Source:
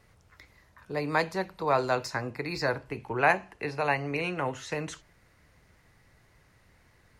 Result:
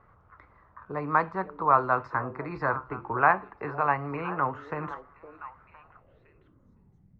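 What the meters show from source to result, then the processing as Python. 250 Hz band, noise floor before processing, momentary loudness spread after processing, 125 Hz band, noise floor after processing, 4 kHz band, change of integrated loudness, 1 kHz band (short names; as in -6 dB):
-1.0 dB, -63 dBFS, 17 LU, 0.0 dB, -61 dBFS, under -15 dB, +2.0 dB, +5.5 dB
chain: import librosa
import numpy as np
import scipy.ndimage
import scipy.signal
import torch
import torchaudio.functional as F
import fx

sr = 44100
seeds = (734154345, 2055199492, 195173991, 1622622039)

y = fx.dynamic_eq(x, sr, hz=540.0, q=1.0, threshold_db=-39.0, ratio=4.0, max_db=-5)
y = fx.filter_sweep_lowpass(y, sr, from_hz=1200.0, to_hz=180.0, start_s=5.61, end_s=6.89, q=4.0)
y = fx.echo_stepped(y, sr, ms=511, hz=430.0, octaves=1.4, feedback_pct=70, wet_db=-11.0)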